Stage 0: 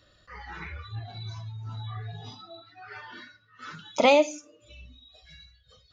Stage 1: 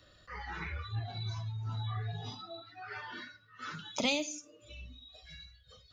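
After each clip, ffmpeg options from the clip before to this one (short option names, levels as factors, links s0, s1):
-filter_complex "[0:a]acrossover=split=230|3000[s0][s1][s2];[s1]acompressor=threshold=0.0126:ratio=6[s3];[s0][s3][s2]amix=inputs=3:normalize=0"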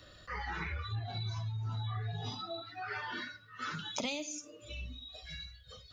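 -af "acompressor=threshold=0.00891:ratio=4,volume=1.88"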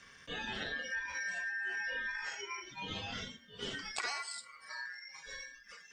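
-af "aeval=exprs='val(0)*sin(2*PI*1700*n/s)':c=same,volume=1.19"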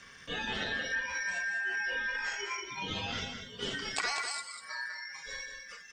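-af "aecho=1:1:197:0.447,volume=1.68"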